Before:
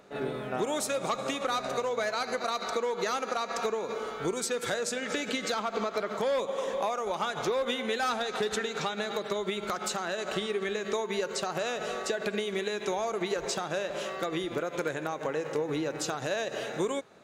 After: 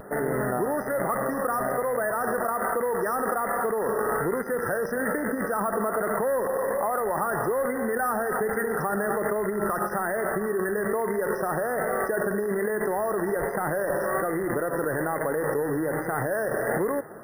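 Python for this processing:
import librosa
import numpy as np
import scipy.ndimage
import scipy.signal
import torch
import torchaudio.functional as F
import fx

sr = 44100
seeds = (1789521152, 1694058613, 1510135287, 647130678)

p1 = fx.rattle_buzz(x, sr, strikes_db=-50.0, level_db=-24.0)
p2 = fx.over_compress(p1, sr, threshold_db=-36.0, ratio=-0.5)
p3 = p1 + (p2 * 10.0 ** (2.5 / 20.0))
p4 = fx.brickwall_bandstop(p3, sr, low_hz=2000.0, high_hz=5800.0)
p5 = fx.vibrato(p4, sr, rate_hz=1.2, depth_cents=47.0)
p6 = p5 + fx.echo_single(p5, sr, ms=293, db=-23.5, dry=0)
p7 = np.repeat(scipy.signal.resample_poly(p6, 1, 4), 4)[:len(p6)]
y = p7 * 10.0 ** (2.0 / 20.0)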